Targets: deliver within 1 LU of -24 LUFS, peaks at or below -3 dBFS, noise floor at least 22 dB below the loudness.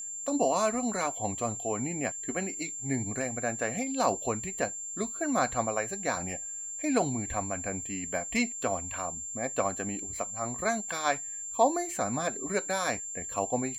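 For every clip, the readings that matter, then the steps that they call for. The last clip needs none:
steady tone 7.3 kHz; tone level -36 dBFS; loudness -30.5 LUFS; peak level -11.5 dBFS; loudness target -24.0 LUFS
-> band-stop 7.3 kHz, Q 30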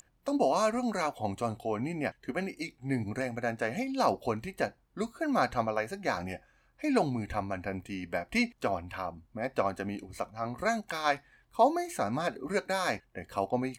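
steady tone not found; loudness -32.5 LUFS; peak level -12.0 dBFS; loudness target -24.0 LUFS
-> trim +8.5 dB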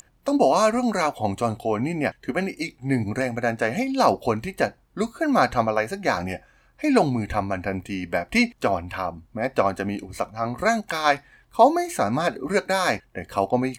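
loudness -24.0 LUFS; peak level -3.5 dBFS; noise floor -59 dBFS

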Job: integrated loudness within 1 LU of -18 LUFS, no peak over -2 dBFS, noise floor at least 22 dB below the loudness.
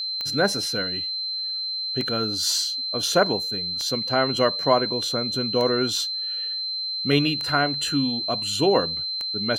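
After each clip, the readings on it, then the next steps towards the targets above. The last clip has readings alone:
clicks found 6; steady tone 4.1 kHz; tone level -26 dBFS; loudness -23.0 LUFS; peak level -5.5 dBFS; loudness target -18.0 LUFS
-> de-click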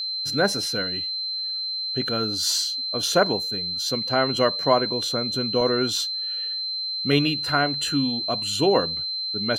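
clicks found 0; steady tone 4.1 kHz; tone level -26 dBFS
-> band-stop 4.1 kHz, Q 30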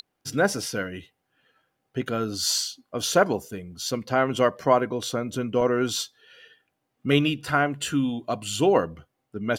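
steady tone not found; loudness -25.0 LUFS; peak level -5.5 dBFS; loudness target -18.0 LUFS
-> trim +7 dB; peak limiter -2 dBFS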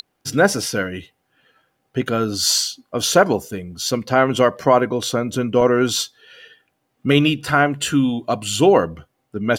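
loudness -18.5 LUFS; peak level -2.0 dBFS; noise floor -71 dBFS

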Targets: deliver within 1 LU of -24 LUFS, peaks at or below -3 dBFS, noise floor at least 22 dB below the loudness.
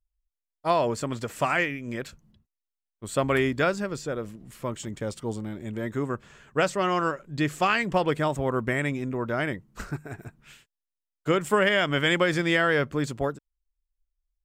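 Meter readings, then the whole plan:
loudness -26.5 LUFS; peak level -9.0 dBFS; loudness target -24.0 LUFS
-> trim +2.5 dB

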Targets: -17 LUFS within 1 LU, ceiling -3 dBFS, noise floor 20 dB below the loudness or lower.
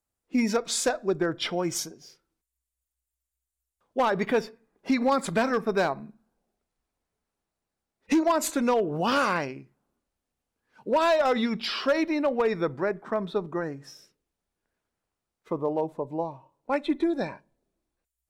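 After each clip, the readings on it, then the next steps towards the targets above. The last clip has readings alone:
clipped samples 0.5%; clipping level -17.0 dBFS; loudness -27.0 LUFS; peak level -17.0 dBFS; loudness target -17.0 LUFS
-> clip repair -17 dBFS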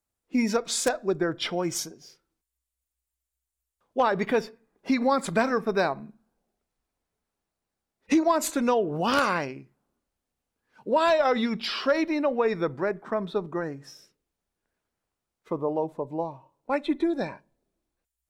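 clipped samples 0.0%; loudness -26.5 LUFS; peak level -8.0 dBFS; loudness target -17.0 LUFS
-> trim +9.5 dB; peak limiter -3 dBFS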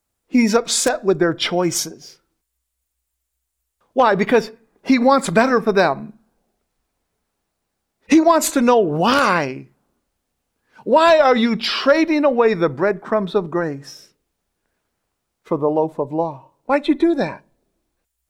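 loudness -17.0 LUFS; peak level -3.0 dBFS; noise floor -77 dBFS

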